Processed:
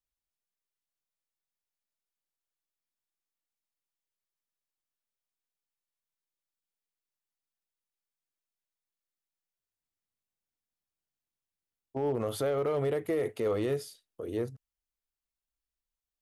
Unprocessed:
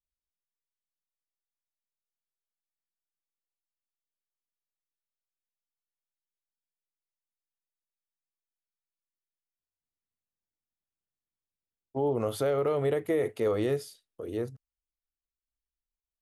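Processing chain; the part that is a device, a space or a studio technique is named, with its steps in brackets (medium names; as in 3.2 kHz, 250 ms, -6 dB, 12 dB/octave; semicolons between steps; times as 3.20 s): limiter into clipper (peak limiter -22 dBFS, peak gain reduction 3.5 dB; hard clipper -23.5 dBFS, distortion -27 dB)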